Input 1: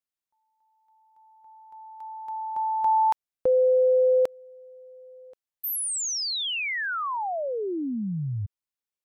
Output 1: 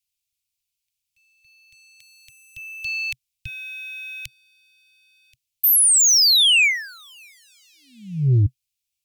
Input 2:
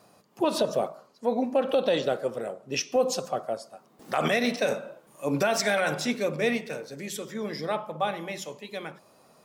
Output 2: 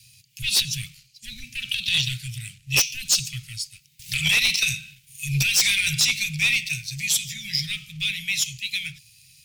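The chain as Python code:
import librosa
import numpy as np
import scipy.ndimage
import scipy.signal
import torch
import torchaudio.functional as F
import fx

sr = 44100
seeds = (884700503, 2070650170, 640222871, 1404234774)

y = fx.leveller(x, sr, passes=1)
y = scipy.signal.sosfilt(scipy.signal.ellip(4, 1.0, 80, [130.0, 2400.0], 'bandstop', fs=sr, output='sos'), y)
y = fx.fold_sine(y, sr, drive_db=10, ceiling_db=-13.0)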